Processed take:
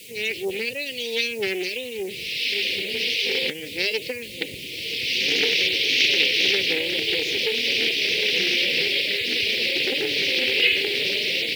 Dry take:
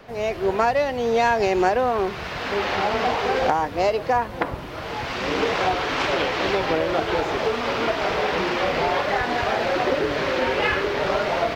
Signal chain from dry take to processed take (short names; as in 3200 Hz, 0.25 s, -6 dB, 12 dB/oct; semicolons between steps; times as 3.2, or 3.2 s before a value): HPF 48 Hz 12 dB/oct; 0.69–3.27 harmonic tremolo 1.4 Hz, depth 50%, crossover 1200 Hz; weighting filter D; spectral gate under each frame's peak -25 dB strong; requantised 8-bit, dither triangular; elliptic band-stop 480–2300 Hz, stop band 40 dB; high shelf 3200 Hz +9.5 dB; Doppler distortion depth 0.17 ms; gain -3.5 dB